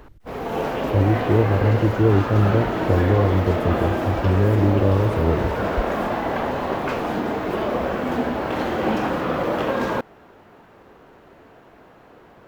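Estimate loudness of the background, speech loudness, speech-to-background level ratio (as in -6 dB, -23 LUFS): -24.5 LUFS, -20.5 LUFS, 4.0 dB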